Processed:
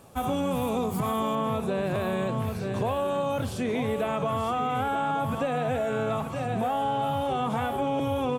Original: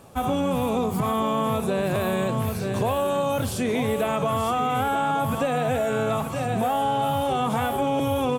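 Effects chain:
high-shelf EQ 6,600 Hz +2.5 dB, from 0:01.35 −10 dB
level −3.5 dB

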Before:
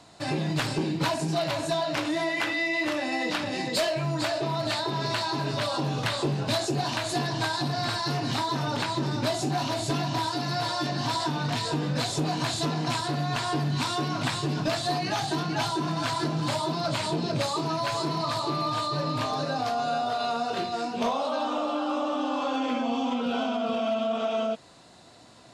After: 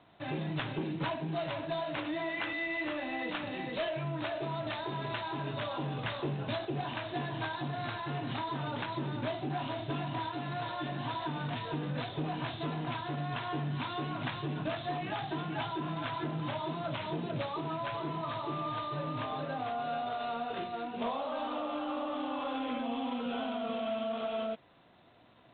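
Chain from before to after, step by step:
level −7.5 dB
G.726 24 kbit/s 8,000 Hz

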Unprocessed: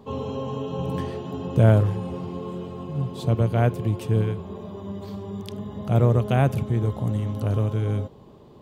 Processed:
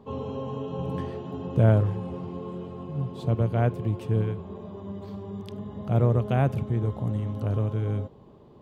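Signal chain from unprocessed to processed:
high-shelf EQ 3,900 Hz −10 dB
level −3 dB

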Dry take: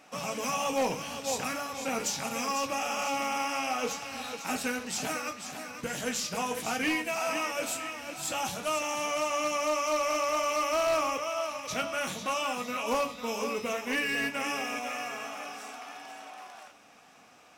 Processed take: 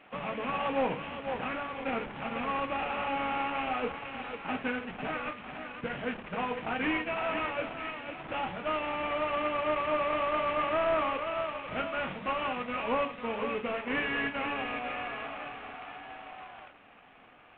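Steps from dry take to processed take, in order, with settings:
variable-slope delta modulation 16 kbit/s

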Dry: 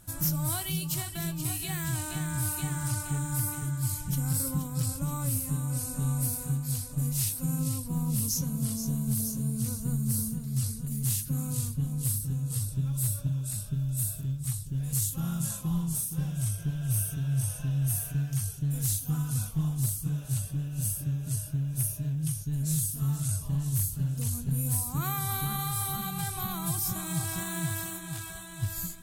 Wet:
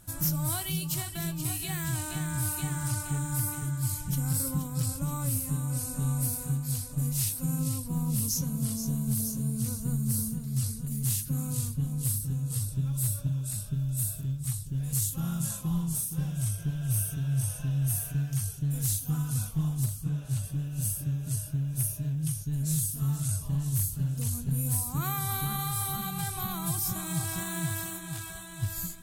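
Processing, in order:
0:19.84–0:20.43: high-shelf EQ 4,800 Hz → 8,200 Hz −9 dB

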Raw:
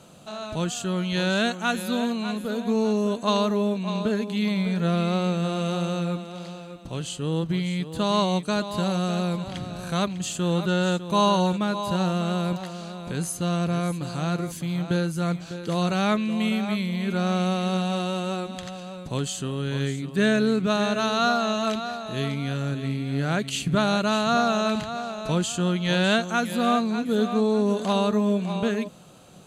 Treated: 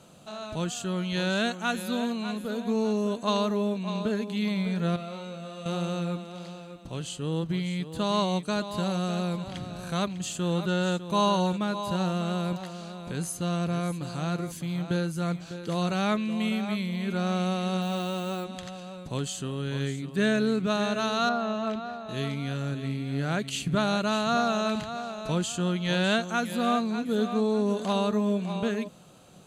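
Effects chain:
0:04.96–0:05.66: tuned comb filter 76 Hz, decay 0.35 s, harmonics all, mix 90%
0:17.81–0:18.43: background noise violet −52 dBFS
0:21.29–0:22.09: low-pass filter 1,500 Hz 6 dB per octave
level −3.5 dB

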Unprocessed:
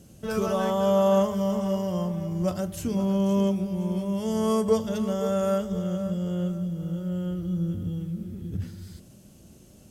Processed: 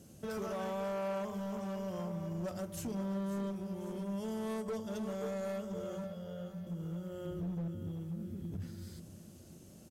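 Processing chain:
high-pass filter 77 Hz 6 dB per octave
parametric band 2,900 Hz −2.5 dB
mains-hum notches 60/120/180 Hz
0:07.25–0:07.68: low-shelf EQ 320 Hz +7 dB
downward compressor 2 to 1, threshold −36 dBFS, peak gain reduction 11 dB
0:06.04–0:06.67: phaser with its sweep stopped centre 1,600 Hz, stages 8
hard clipping −31 dBFS, distortion −13 dB
repeating echo 543 ms, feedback 52%, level −14 dB
level −3.5 dB

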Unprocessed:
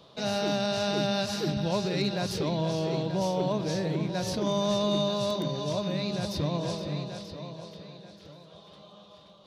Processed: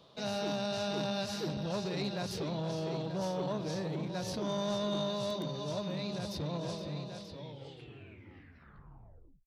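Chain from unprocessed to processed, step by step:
turntable brake at the end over 2.19 s
saturating transformer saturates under 380 Hz
level −5.5 dB

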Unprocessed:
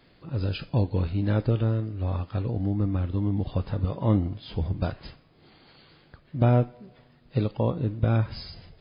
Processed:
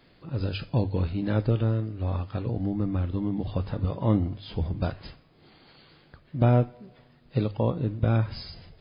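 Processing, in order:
mains-hum notches 50/100 Hz

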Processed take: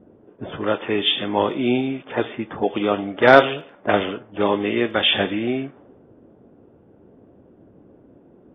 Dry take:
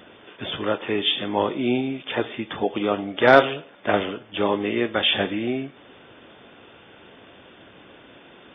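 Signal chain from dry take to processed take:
surface crackle 11 per second −48 dBFS
low-pass that shuts in the quiet parts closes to 340 Hz, open at −18 dBFS
level +2.5 dB

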